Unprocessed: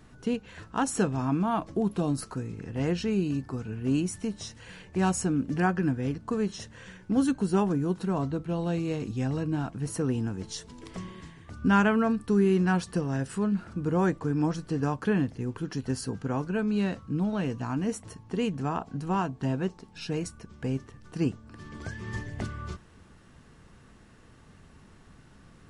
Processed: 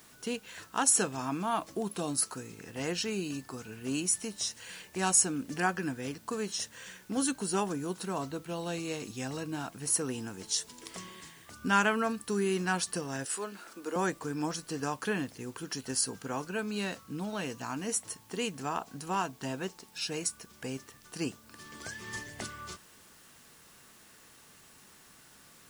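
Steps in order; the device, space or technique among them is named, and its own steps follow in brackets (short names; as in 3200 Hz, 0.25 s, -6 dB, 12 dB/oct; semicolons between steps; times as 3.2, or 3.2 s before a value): 13.25–13.96 HPF 290 Hz 24 dB/oct; turntable without a phono preamp (RIAA curve recording; white noise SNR 27 dB); gain -1.5 dB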